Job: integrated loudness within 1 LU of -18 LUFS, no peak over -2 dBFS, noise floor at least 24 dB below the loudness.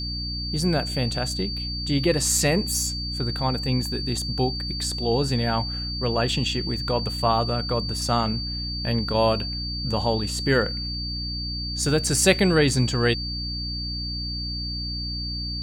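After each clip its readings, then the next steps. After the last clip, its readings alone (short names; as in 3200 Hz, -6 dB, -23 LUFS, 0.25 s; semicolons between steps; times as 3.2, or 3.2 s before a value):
hum 60 Hz; harmonics up to 300 Hz; hum level -30 dBFS; steady tone 4600 Hz; tone level -30 dBFS; loudness -24.0 LUFS; peak -6.0 dBFS; loudness target -18.0 LUFS
-> notches 60/120/180/240/300 Hz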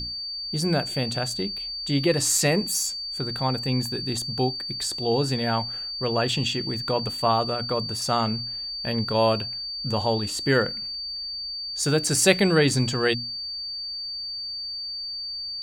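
hum none; steady tone 4600 Hz; tone level -30 dBFS
-> notch 4600 Hz, Q 30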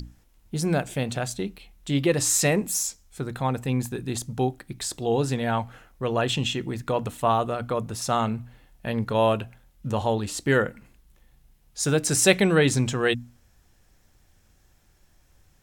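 steady tone none; loudness -25.0 LUFS; peak -6.0 dBFS; loudness target -18.0 LUFS
-> gain +7 dB; limiter -2 dBFS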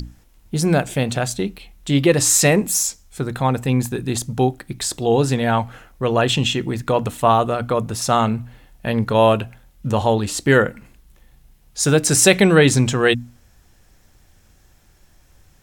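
loudness -18.5 LUFS; peak -2.0 dBFS; noise floor -54 dBFS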